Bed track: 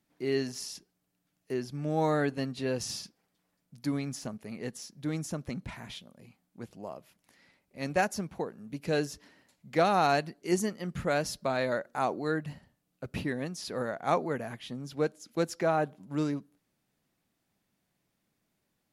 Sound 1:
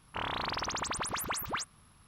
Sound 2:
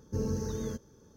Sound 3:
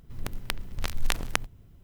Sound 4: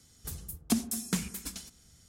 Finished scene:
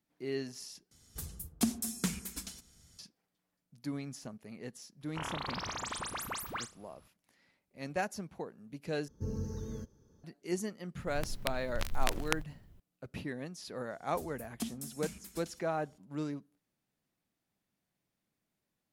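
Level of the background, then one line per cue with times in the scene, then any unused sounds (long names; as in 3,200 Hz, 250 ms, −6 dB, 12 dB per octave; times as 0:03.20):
bed track −7 dB
0:00.91: overwrite with 4 −2.5 dB
0:05.01: mix in 1 −5 dB + flutter between parallel walls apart 6 metres, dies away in 0.24 s
0:09.08: overwrite with 2 −10 dB + low-shelf EQ 190 Hz +8 dB
0:10.97: mix in 3 −5.5 dB
0:13.90: mix in 4 −10.5 dB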